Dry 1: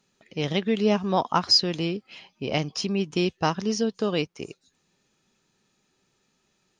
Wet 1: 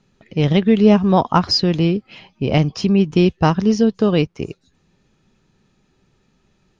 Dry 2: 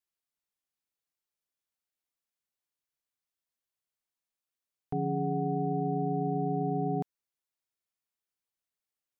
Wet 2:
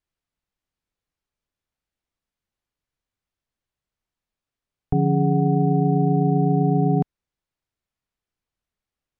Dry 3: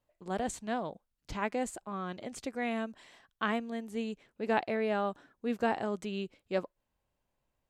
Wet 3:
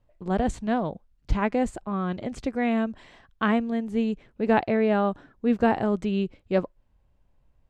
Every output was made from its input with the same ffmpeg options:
-af "aemphasis=mode=reproduction:type=bsi,volume=6.5dB"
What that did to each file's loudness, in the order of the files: +8.5, +11.5, +9.0 LU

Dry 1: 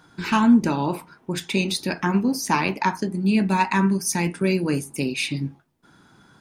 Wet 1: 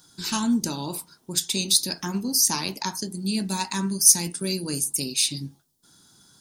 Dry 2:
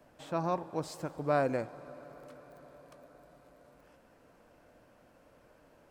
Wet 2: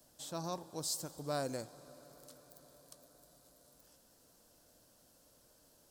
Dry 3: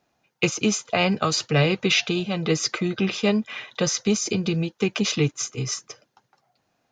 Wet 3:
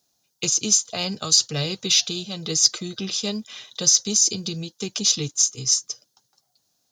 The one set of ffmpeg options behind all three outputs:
-af "lowshelf=f=320:g=4,aexciter=amount=10.4:drive=3.9:freq=3.5k,volume=-10dB"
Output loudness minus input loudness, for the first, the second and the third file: -0.5, -6.0, +3.0 LU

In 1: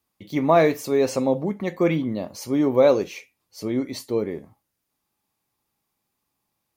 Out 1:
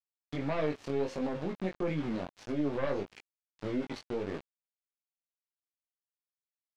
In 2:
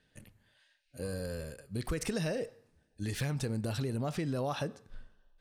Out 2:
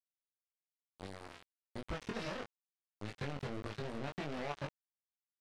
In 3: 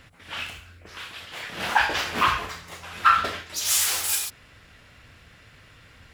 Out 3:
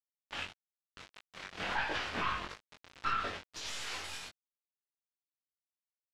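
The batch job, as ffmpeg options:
-af "aeval=exprs='val(0)*gte(abs(val(0)),0.0316)':c=same,aeval=exprs='0.596*(cos(1*acos(clip(val(0)/0.596,-1,1)))-cos(1*PI/2))+0.106*(cos(5*acos(clip(val(0)/0.596,-1,1)))-cos(5*PI/2))+0.0944*(cos(6*acos(clip(val(0)/0.596,-1,1)))-cos(6*PI/2))':c=same,alimiter=limit=-14.5dB:level=0:latency=1:release=149,lowpass=4k,flanger=delay=19.5:depth=2.6:speed=1.6,volume=-6.5dB"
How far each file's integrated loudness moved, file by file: -13.0, -8.0, -14.5 LU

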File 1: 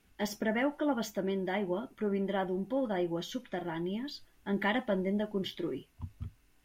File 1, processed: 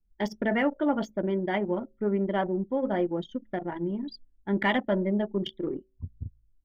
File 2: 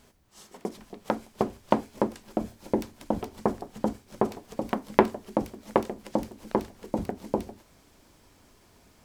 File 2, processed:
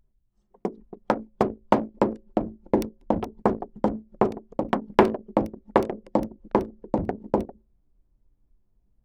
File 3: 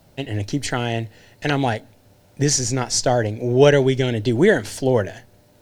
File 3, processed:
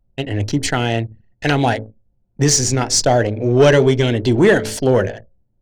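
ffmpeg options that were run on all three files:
-af "bandreject=f=54.4:t=h:w=4,bandreject=f=108.8:t=h:w=4,bandreject=f=163.2:t=h:w=4,bandreject=f=217.6:t=h:w=4,bandreject=f=272:t=h:w=4,bandreject=f=326.4:t=h:w=4,bandreject=f=380.8:t=h:w=4,bandreject=f=435.2:t=h:w=4,bandreject=f=489.6:t=h:w=4,bandreject=f=544:t=h:w=4,bandreject=f=598.4:t=h:w=4,bandreject=f=652.8:t=h:w=4,acontrast=86,anlmdn=100,volume=-1.5dB"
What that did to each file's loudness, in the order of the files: +5.0, +4.0, +3.5 LU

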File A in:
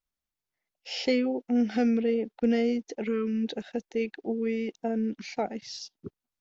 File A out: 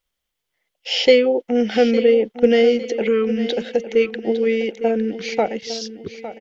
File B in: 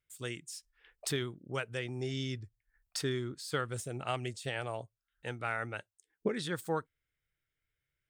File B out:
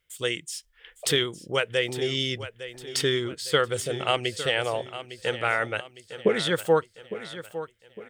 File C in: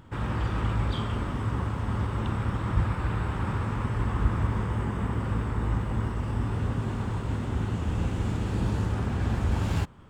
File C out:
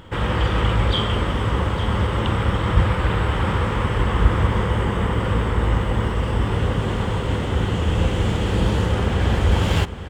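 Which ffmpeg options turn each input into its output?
-af "equalizer=f=125:t=o:w=0.33:g=-7,equalizer=f=250:t=o:w=0.33:g=-6,equalizer=f=500:t=o:w=0.33:g=7,equalizer=f=2k:t=o:w=0.33:g=4,equalizer=f=3.15k:t=o:w=0.33:g=9,aecho=1:1:857|1714|2571|3428:0.224|0.094|0.0395|0.0166,volume=9dB"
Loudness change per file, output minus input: +10.5, +11.0, +8.0 LU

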